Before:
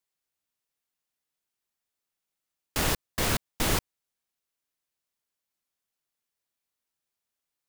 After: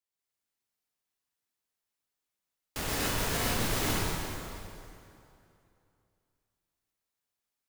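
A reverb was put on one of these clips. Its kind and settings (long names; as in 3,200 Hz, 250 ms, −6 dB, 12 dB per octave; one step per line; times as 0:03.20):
dense smooth reverb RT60 2.7 s, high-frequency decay 0.8×, pre-delay 110 ms, DRR −7 dB
level −8.5 dB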